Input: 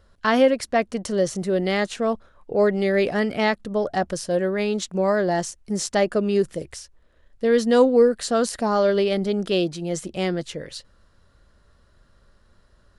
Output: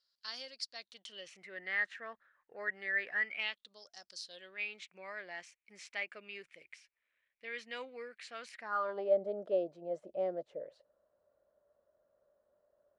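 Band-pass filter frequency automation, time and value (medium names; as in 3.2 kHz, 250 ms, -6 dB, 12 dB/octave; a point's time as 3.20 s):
band-pass filter, Q 7.5
0.70 s 4.7 kHz
1.62 s 1.8 kHz
3.19 s 1.8 kHz
3.94 s 6 kHz
4.68 s 2.3 kHz
8.56 s 2.3 kHz
9.10 s 600 Hz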